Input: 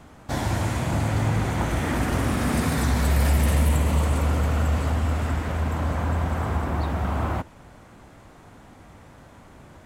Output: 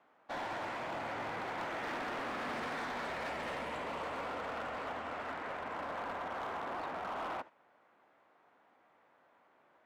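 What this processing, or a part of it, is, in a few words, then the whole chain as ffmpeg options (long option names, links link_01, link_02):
walkie-talkie: -af "highpass=520,lowpass=2500,asoftclip=type=hard:threshold=-30dB,agate=range=-9dB:threshold=-43dB:ratio=16:detection=peak,volume=-5.5dB"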